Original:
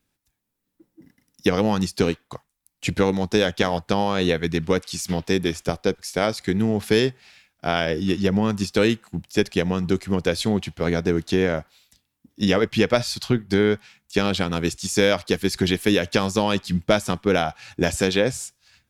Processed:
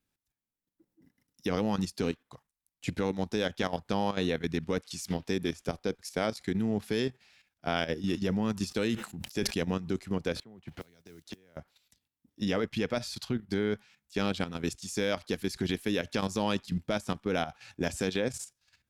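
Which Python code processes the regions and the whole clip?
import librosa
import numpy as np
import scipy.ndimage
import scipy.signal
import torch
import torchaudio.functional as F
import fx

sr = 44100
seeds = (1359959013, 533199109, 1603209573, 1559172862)

y = fx.chain(x, sr, fx.high_shelf(hz=4600.0, db=3.5),
    fx.sustainer(db_per_s=110.0), at=(7.78, 9.75))
y = fx.chain(y, sr, fx.gate_flip(shuts_db=-15.0, range_db=-28),
    fx.mod_noise(seeds[0], snr_db=28),
    fx.band_squash(depth_pct=100), at=(10.36, 11.57))
y = fx.dynamic_eq(y, sr, hz=240.0, q=3.2, threshold_db=-37.0, ratio=4.0, max_db=4)
y = fx.level_steps(y, sr, step_db=11)
y = y * librosa.db_to_amplitude(-6.5)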